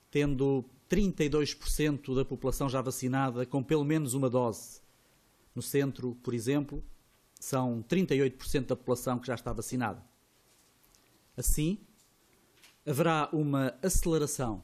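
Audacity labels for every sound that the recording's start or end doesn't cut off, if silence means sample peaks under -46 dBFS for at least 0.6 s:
5.560000	10.020000	sound
10.850000	11.820000	sound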